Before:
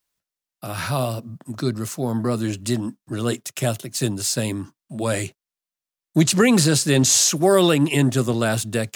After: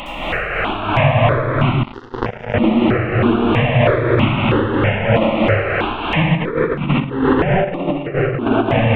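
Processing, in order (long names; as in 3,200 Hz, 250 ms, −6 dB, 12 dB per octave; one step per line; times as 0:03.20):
linear delta modulator 16 kbit/s, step −24 dBFS
in parallel at −3 dB: brickwall limiter −13 dBFS, peak gain reduction 7.5 dB
on the sum: parametric band 480 Hz +3 dB 0.2 octaves
convolution reverb RT60 2.8 s, pre-delay 60 ms, DRR −9 dB
0:01.83–0:02.54: power curve on the samples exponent 3
amplitude tremolo 3.1 Hz, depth 43%
compressor whose output falls as the input rises −10 dBFS, ratio −0.5
step-sequenced phaser 3.1 Hz 430–1,700 Hz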